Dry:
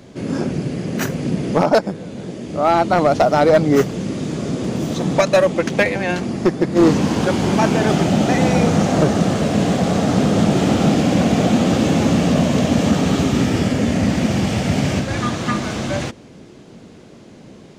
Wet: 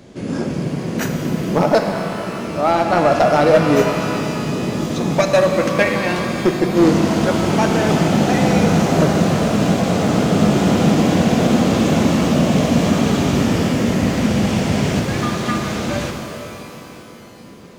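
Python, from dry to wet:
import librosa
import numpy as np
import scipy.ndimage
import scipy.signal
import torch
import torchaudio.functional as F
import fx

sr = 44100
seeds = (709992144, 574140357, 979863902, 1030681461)

y = fx.rev_shimmer(x, sr, seeds[0], rt60_s=3.1, semitones=12, shimmer_db=-8, drr_db=4.0)
y = y * librosa.db_to_amplitude(-1.0)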